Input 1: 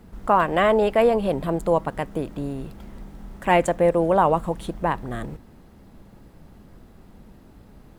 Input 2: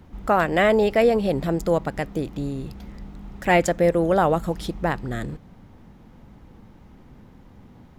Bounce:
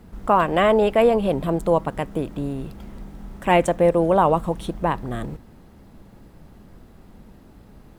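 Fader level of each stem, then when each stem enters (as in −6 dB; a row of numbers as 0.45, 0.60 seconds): +1.0, −14.5 decibels; 0.00, 0.00 seconds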